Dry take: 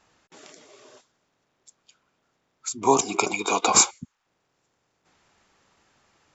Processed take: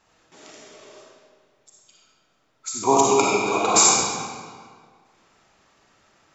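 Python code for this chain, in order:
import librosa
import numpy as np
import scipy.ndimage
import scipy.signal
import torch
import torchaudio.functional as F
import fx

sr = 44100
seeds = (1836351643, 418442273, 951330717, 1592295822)

y = fx.high_shelf(x, sr, hz=2500.0, db=-10.0, at=(3.25, 3.76))
y = fx.rev_freeverb(y, sr, rt60_s=1.8, hf_ratio=0.8, predelay_ms=15, drr_db=-4.0)
y = F.gain(torch.from_numpy(y), -1.0).numpy()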